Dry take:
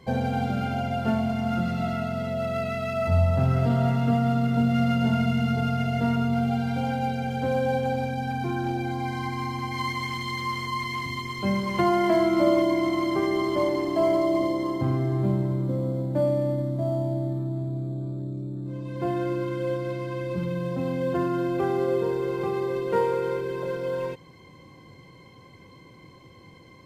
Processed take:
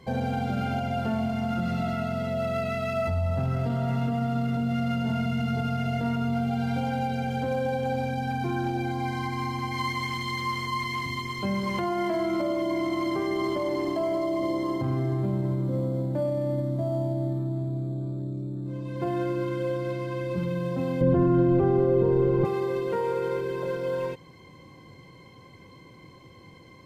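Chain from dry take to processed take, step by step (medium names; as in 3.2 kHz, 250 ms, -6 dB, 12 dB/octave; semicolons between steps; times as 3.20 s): peak limiter -19.5 dBFS, peak gain reduction 10 dB; 21.01–22.45 s: tilt EQ -4 dB/octave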